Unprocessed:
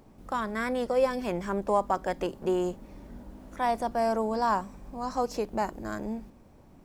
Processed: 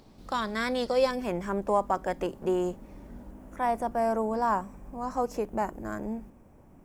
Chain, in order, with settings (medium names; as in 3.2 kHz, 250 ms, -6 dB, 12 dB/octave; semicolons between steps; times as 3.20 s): peaking EQ 4.2 kHz +12 dB 0.87 oct, from 1.11 s -5 dB, from 3.31 s -12 dB